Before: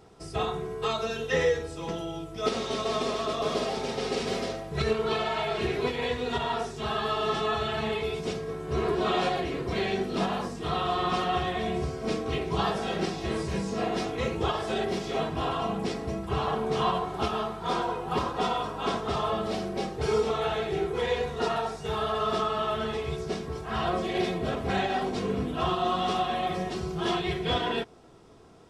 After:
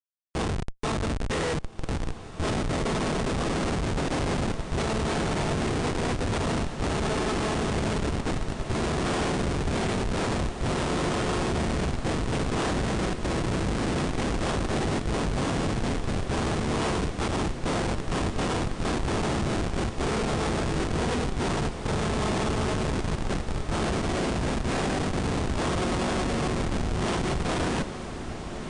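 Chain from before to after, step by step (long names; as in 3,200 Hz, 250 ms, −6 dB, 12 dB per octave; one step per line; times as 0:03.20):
ceiling on every frequency bin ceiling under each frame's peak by 14 dB
dynamic equaliser 300 Hz, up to +4 dB, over −42 dBFS, Q 1.9
comparator with hysteresis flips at −26 dBFS
on a send: feedback delay with all-pass diffusion 1,678 ms, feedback 70%, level −10.5 dB
on the sum: level +2.5 dB
MP3 160 kbit/s 22,050 Hz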